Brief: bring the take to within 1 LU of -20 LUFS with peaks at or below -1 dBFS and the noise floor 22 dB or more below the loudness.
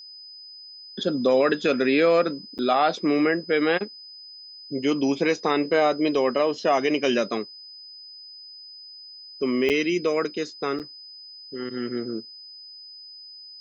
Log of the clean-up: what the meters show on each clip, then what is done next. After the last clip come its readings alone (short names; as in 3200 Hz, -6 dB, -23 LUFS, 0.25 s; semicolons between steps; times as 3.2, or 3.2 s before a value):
dropouts 3; longest dropout 8.1 ms; steady tone 5000 Hz; tone level -41 dBFS; loudness -23.5 LUFS; peak -9.5 dBFS; loudness target -20.0 LUFS
-> interpolate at 2.58/9.69/10.79, 8.1 ms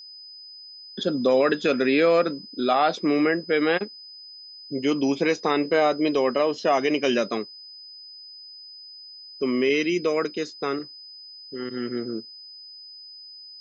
dropouts 0; steady tone 5000 Hz; tone level -41 dBFS
-> notch 5000 Hz, Q 30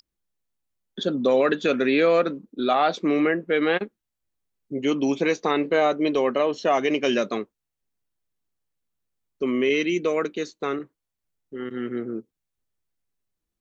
steady tone none; loudness -23.5 LUFS; peak -9.5 dBFS; loudness target -20.0 LUFS
-> gain +3.5 dB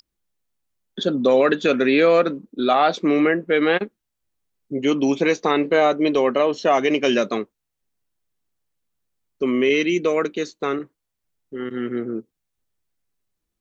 loudness -20.0 LUFS; peak -6.0 dBFS; noise floor -80 dBFS